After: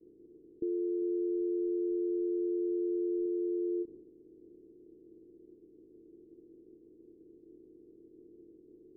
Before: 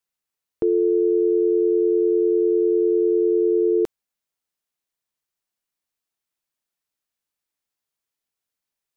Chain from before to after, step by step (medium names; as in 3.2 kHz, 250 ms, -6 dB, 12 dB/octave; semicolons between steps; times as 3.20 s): spectral levelling over time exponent 0.2; expander -30 dBFS; four-pole ladder low-pass 370 Hz, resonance 55%; 1.02–3.26 s: bass shelf 86 Hz +10 dB; endings held to a fixed fall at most 360 dB/s; trim -9 dB